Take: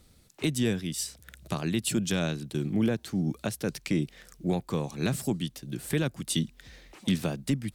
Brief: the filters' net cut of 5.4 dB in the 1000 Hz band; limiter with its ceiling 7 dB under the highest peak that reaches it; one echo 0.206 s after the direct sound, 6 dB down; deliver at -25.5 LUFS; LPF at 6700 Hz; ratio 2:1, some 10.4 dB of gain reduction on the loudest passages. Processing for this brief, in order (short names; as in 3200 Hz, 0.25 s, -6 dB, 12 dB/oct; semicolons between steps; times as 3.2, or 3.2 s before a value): LPF 6700 Hz; bell 1000 Hz -8 dB; compressor 2:1, threshold -42 dBFS; limiter -30 dBFS; echo 0.206 s -6 dB; gain +15.5 dB